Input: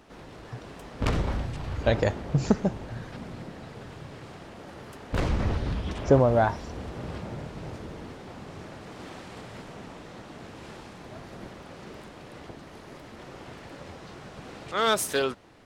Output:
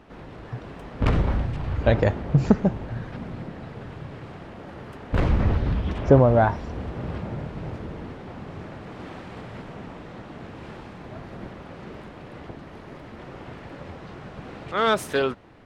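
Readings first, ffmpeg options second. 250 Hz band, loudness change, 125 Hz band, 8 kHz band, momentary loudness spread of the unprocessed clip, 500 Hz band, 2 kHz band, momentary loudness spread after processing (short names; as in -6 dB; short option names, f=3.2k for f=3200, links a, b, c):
+4.5 dB, +4.0 dB, +6.0 dB, n/a, 19 LU, +3.0 dB, +2.5 dB, 19 LU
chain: -af "bass=f=250:g=3,treble=f=4k:g=-12,volume=3dB"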